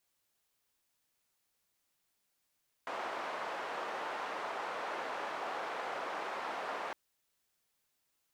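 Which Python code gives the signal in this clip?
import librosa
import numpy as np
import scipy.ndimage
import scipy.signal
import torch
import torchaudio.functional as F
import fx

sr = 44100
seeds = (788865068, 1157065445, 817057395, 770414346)

y = fx.band_noise(sr, seeds[0], length_s=4.06, low_hz=610.0, high_hz=980.0, level_db=-39.5)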